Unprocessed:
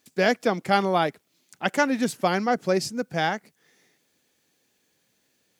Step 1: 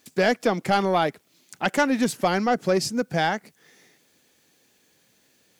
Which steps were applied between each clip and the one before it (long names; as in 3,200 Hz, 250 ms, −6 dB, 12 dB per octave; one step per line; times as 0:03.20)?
in parallel at +3 dB: downward compressor, threshold −29 dBFS, peak gain reduction 14 dB
on the sum: soft clipping −9 dBFS, distortion −18 dB
level −1 dB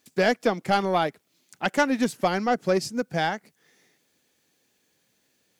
expander for the loud parts 1.5 to 1, over −30 dBFS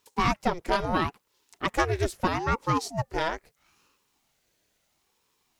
ring modulator whose carrier an LFO sweeps 430 Hz, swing 65%, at 0.76 Hz